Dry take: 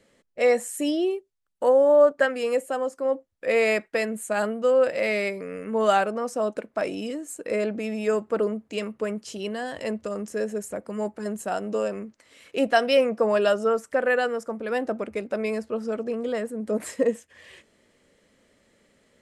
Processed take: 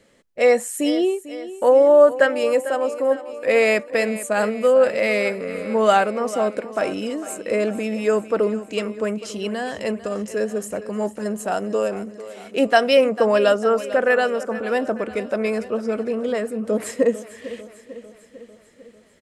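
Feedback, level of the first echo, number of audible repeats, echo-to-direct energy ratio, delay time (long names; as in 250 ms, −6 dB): 59%, −15.0 dB, 5, −13.0 dB, 448 ms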